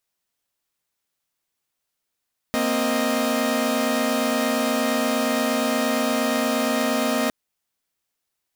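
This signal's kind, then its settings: chord A#3/C4/D#5 saw, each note -22 dBFS 4.76 s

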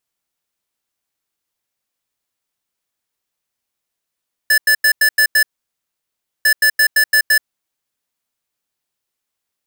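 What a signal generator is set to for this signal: beep pattern square 1.74 kHz, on 0.08 s, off 0.09 s, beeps 6, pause 1.02 s, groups 2, -11.5 dBFS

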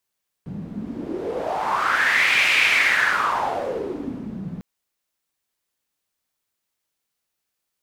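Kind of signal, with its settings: wind-like swept noise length 4.15 s, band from 180 Hz, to 2.4 kHz, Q 5.6, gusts 1, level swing 15 dB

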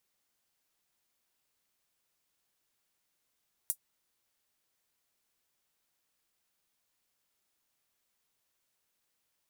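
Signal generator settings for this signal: closed hi-hat, high-pass 8.9 kHz, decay 0.08 s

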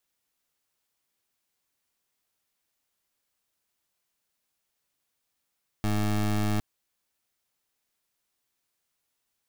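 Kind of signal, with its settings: pulse 105 Hz, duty 21% -25.5 dBFS 0.76 s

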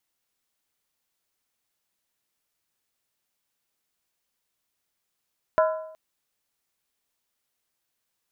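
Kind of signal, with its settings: skin hit length 0.37 s, lowest mode 633 Hz, decay 0.75 s, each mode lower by 5 dB, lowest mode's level -15.5 dB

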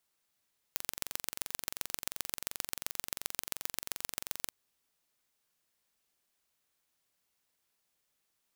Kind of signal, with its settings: pulse train 22.8 per s, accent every 3, -5 dBFS 3.76 s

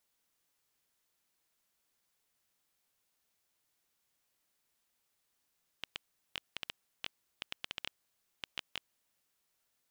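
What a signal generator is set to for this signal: random clicks 6.1 per s -19.5 dBFS 3.45 s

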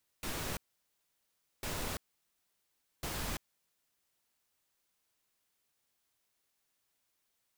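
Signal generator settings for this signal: noise bursts pink, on 0.34 s, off 1.06 s, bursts 3, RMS -38 dBFS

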